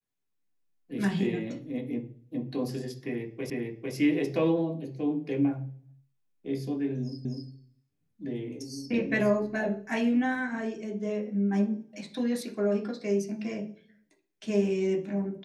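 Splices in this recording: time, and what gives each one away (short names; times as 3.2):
3.5 repeat of the last 0.45 s
7.25 repeat of the last 0.25 s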